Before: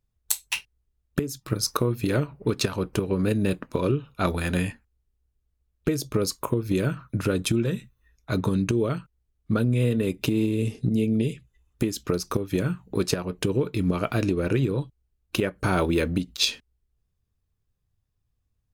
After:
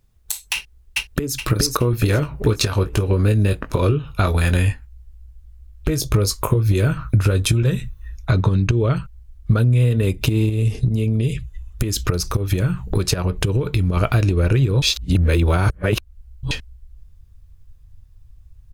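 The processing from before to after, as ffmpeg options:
-filter_complex "[0:a]asplit=2[a][b];[b]afade=t=in:st=0.54:d=0.01,afade=t=out:st=1.33:d=0.01,aecho=0:1:420|840|1260|1680|2100|2520:0.668344|0.300755|0.13534|0.0609028|0.0274063|0.0123328[c];[a][c]amix=inputs=2:normalize=0,asettb=1/sr,asplit=3[d][e][f];[d]atrim=end=1.914[g];[e]atrim=start=1.91:end=7.63,asetpts=PTS-STARTPTS,afade=t=in:d=0.004:c=qsin,afade=t=out:st=5.716:d=0.004:c=qsin,asplit=2[h][i];[i]adelay=19,volume=-7.5dB[j];[h][j]amix=inputs=2:normalize=0,atrim=end_sample=252252[k];[f]atrim=start=7.626[l];[g][k]acrossfade=d=0.004:c1=hsin:c2=qsin[m];[m][l]acrossfade=d=0.004:c1=qsin:c2=hsin,asettb=1/sr,asplit=3[n][o][p];[n]atrim=end=8.314[q];[o]atrim=start=8.31:end=8.96,asetpts=PTS-STARTPTS,afade=t=in:d=0.004:c=qsin,afade=t=out:st=0.646:d=0.004:c=qsin,lowpass=5.1k[r];[p]atrim=start=8.956[s];[q][r]acrossfade=d=0.004:c1=hsin:c2=qsin[t];[t][s]acrossfade=d=0.004:c1=qsin:c2=hsin,asettb=1/sr,asplit=3[u][v][w];[u]atrim=end=10.494[x];[v]atrim=start=10.49:end=13.97,asetpts=PTS-STARTPTS,afade=t=in:d=0.004:c=qsin,afade=t=out:st=3.476:d=0.004:c=qsin,acompressor=threshold=-33dB:ratio=2:attack=3.2:release=140:knee=1:detection=peak[y];[w]atrim=start=13.966[z];[x][y]acrossfade=d=0.004:c1=hsin:c2=qsin[aa];[aa][z]acrossfade=d=0.004:c1=qsin:c2=hsin,asplit=3[ab][ac][ad];[ab]atrim=end=14.822[ae];[ac]atrim=start=14.818:end=16.512,asetpts=PTS-STARTPTS,areverse[af];[ad]atrim=start=16.508[ag];[ae][af]acrossfade=d=0.004:c1=hsin:c2=hsin[ah];[ah][ag]acrossfade=d=0.004:c1=hsin:c2=hsin,asubboost=boost=9:cutoff=76,acompressor=threshold=-30dB:ratio=4,alimiter=level_in=20dB:limit=-1dB:release=50:level=0:latency=1,volume=-5dB"

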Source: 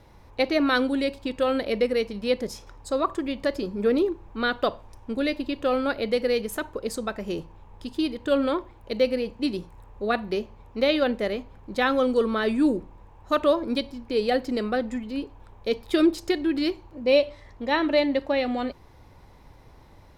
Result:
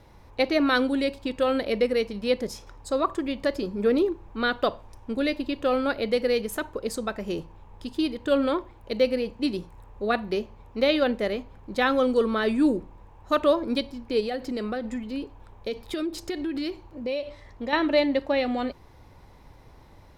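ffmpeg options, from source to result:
-filter_complex "[0:a]asettb=1/sr,asplit=3[a][b][c];[a]atrim=end=14.204[d];[b]atrim=start=14.2:end=17.73,asetpts=PTS-STARTPTS,afade=t=in:d=0.004:c=qsin,afade=t=out:st=3.526:d=0.004:c=qsin,acompressor=threshold=-26dB:ratio=6:attack=3.2:release=140:knee=1:detection=peak[e];[c]atrim=start=17.726[f];[d][e]acrossfade=d=0.004:c1=hsin:c2=qsin[g];[g][f]acrossfade=d=0.004:c1=qsin:c2=hsin"

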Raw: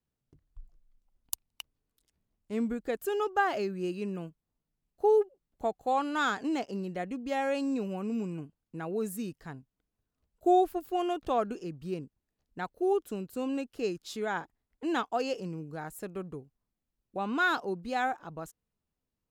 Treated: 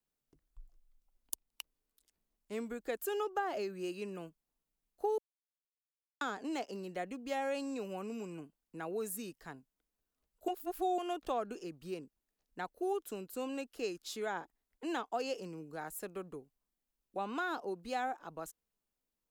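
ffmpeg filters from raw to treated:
-filter_complex "[0:a]asplit=5[a][b][c][d][e];[a]atrim=end=5.18,asetpts=PTS-STARTPTS,afade=t=out:st=5.176:d=0.004:c=hsin[f];[b]atrim=start=5.18:end=6.21,asetpts=PTS-STARTPTS,volume=0[g];[c]atrim=start=6.21:end=10.482,asetpts=PTS-STARTPTS,afade=t=in:d=0.004:c=hsin[h];[d]atrim=start=10.478:end=10.982,asetpts=PTS-STARTPTS,areverse[i];[e]atrim=start=10.978[j];[f][g][h]concat=n=3:v=0:a=1[k];[k][i]acrossfade=d=0.004:c1=hsin:c2=hsin[l];[l][j]acrossfade=d=0.004:c1=hsin:c2=hsin,equalizer=f=100:w=0.87:g=-14.5,acrossover=split=340|820[m][n][o];[m]acompressor=threshold=-43dB:ratio=4[p];[n]acompressor=threshold=-34dB:ratio=4[q];[o]acompressor=threshold=-39dB:ratio=4[r];[p][q][r]amix=inputs=3:normalize=0,highshelf=f=7.3k:g=6,volume=-2dB"

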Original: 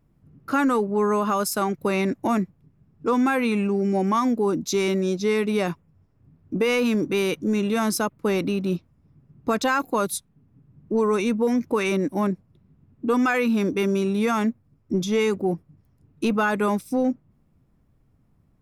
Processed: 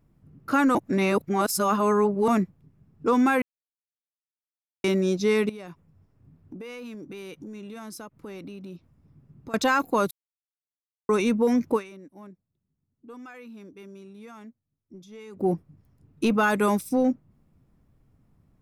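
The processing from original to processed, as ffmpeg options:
-filter_complex "[0:a]asettb=1/sr,asplit=3[a][b][c];[a]atrim=end=5.494[d];[b]atrim=start=5.49:end=9.54,asetpts=PTS-STARTPTS,afade=t=in:d=0.004:c=qsin,afade=t=out:st=4.046:d=0.004:c=qsin,acompressor=threshold=-39dB:ratio=5:attack=3.2:release=140:knee=1:detection=peak[e];[c]atrim=start=9.536[f];[d][e]acrossfade=d=0.004:c1=hsin:c2=qsin[g];[g][f]acrossfade=d=0.004:c1=qsin:c2=hsin,asettb=1/sr,asplit=3[h][i][j];[h]atrim=end=16.434[k];[i]atrim=start=16.43:end=16.89,asetpts=PTS-STARTPTS,afade=t=in:d=0.004:c=qsin,afade=t=out:st=0.456:d=0.004:c=qsin,highshelf=f=6.6k:g=7.5[l];[j]atrim=start=16.886[m];[k][l]acrossfade=d=0.004:c1=hsin:c2=qsin[n];[n][m]acrossfade=d=0.004:c1=qsin:c2=hsin,asplit=9[o][p][q][r][s][t][u][v][w];[o]atrim=end=0.752[x];[p]atrim=start=0.748:end=2.282,asetpts=PTS-STARTPTS,areverse[y];[q]atrim=start=2.278:end=3.42,asetpts=PTS-STARTPTS,afade=t=out:st=1.138:d=0.004:c=hsin[z];[r]atrim=start=3.42:end=4.84,asetpts=PTS-STARTPTS,volume=0[aa];[s]atrim=start=4.84:end=10.11,asetpts=PTS-STARTPTS,afade=t=in:d=0.004:c=hsin,afade=t=out:st=5.266:d=0.004:c=hsin[ab];[t]atrim=start=10.11:end=11.09,asetpts=PTS-STARTPTS,volume=0[ac];[u]atrim=start=11.09:end=12.06,asetpts=PTS-STARTPTS,afade=t=in:d=0.004:c=hsin,afade=t=out:st=0.67:d=0.3:c=exp:silence=0.0749894[ad];[v]atrim=start=12.06:end=15.11,asetpts=PTS-STARTPTS,volume=-22.5dB[ae];[w]atrim=start=15.11,asetpts=PTS-STARTPTS,afade=t=in:d=0.3:c=exp:silence=0.0749894[af];[x][y]acrossfade=d=0.004:c1=hsin:c2=hsin[ag];[z][aa][ab][ac][ad][ae][af]concat=n=7:v=0:a=1[ah];[ag][ah]acrossfade=d=0.004:c1=hsin:c2=hsin"

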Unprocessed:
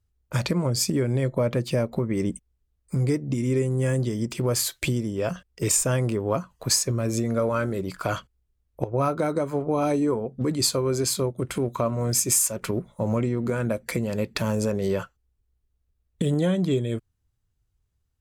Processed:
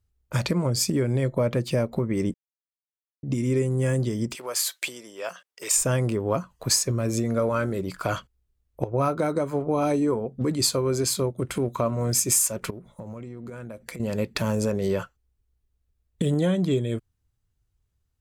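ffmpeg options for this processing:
-filter_complex "[0:a]asettb=1/sr,asplit=3[a][b][c];[a]atrim=end=4.354[d];[b]atrim=start=4.35:end=5.77,asetpts=PTS-STARTPTS,afade=t=in:d=0.004:c=qsin,afade=t=out:st=1.416:d=0.004:c=qsin,highpass=740[e];[c]atrim=start=5.766[f];[d][e]acrossfade=d=0.004:c1=hsin:c2=qsin[g];[g][f]acrossfade=d=0.004:c1=qsin:c2=hsin,asettb=1/sr,asplit=3[h][i][j];[h]atrim=end=12.704[k];[i]atrim=start=12.7:end=14,asetpts=PTS-STARTPTS,afade=t=in:d=0.004:c=qsin,afade=t=out:st=1.296:d=0.004:c=qsin,acompressor=threshold=-34dB:ratio=12:attack=3.2:release=140:knee=1:detection=peak[l];[j]atrim=start=13.996[m];[k][l]acrossfade=d=0.004:c1=hsin:c2=qsin[n];[n][m]acrossfade=d=0.004:c1=qsin:c2=hsin,asplit=3[o][p][q];[o]atrim=end=2.34,asetpts=PTS-STARTPTS,afade=t=out:st=2.336:d=0.004:c=hsin[r];[p]atrim=start=2.34:end=3.23,asetpts=PTS-STARTPTS,volume=0[s];[q]atrim=start=3.23,asetpts=PTS-STARTPTS,afade=t=in:d=0.004:c=hsin[t];[r][s][t]concat=n=3:v=0:a=1"

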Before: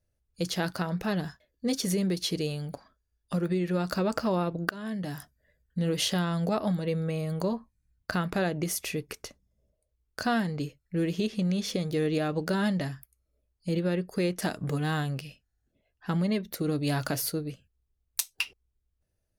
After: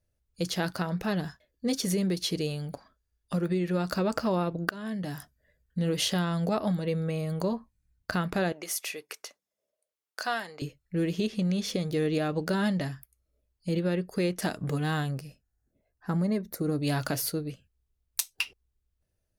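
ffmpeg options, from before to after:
-filter_complex "[0:a]asettb=1/sr,asplit=3[a][b][c];[a]atrim=end=8.524[d];[b]atrim=start=8.52:end=10.62,asetpts=PTS-STARTPTS,afade=t=in:d=0.004:c=qsin,afade=t=out:st=2.096:d=0.004:c=qsin,highpass=620[e];[c]atrim=start=10.616[f];[d][e]acrossfade=d=0.004:c1=hsin:c2=qsin[g];[g][f]acrossfade=d=0.004:c1=qsin:c2=hsin,asettb=1/sr,asplit=3[h][i][j];[h]atrim=end=15.114[k];[i]atrim=start=15.11:end=16.82,asetpts=PTS-STARTPTS,afade=t=in:d=0.004:c=qsin,afade=t=out:st=1.706:d=0.004:c=qsin,equalizer=f=3.1k:t=o:w=0.87:g=-14.5[l];[j]atrim=start=16.816[m];[k][l]acrossfade=d=0.004:c1=hsin:c2=qsin[n];[n][m]acrossfade=d=0.004:c1=qsin:c2=hsin"

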